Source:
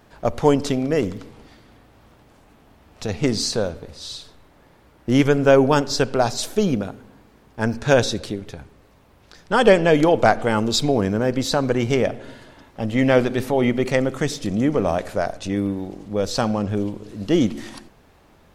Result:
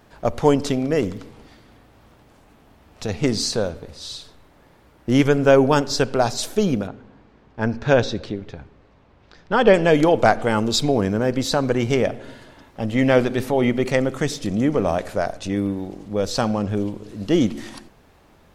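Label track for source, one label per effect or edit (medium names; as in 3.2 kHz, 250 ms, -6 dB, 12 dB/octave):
6.870000	9.740000	distance through air 140 m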